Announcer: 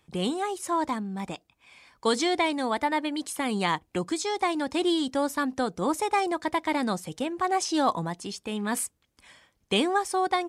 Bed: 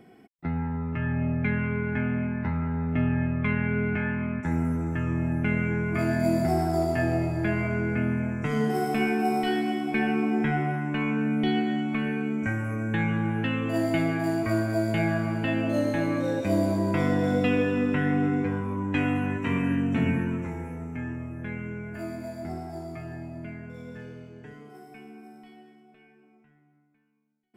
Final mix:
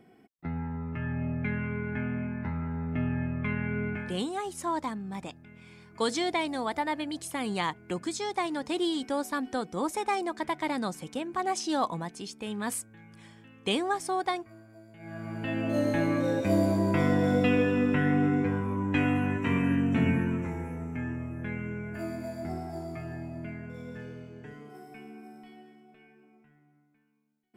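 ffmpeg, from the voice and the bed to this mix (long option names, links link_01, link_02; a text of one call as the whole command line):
ffmpeg -i stem1.wav -i stem2.wav -filter_complex "[0:a]adelay=3950,volume=-4dB[link_01];[1:a]volume=21dB,afade=type=out:start_time=3.88:duration=0.37:silence=0.0841395,afade=type=in:start_time=14.99:duration=0.95:silence=0.0501187[link_02];[link_01][link_02]amix=inputs=2:normalize=0" out.wav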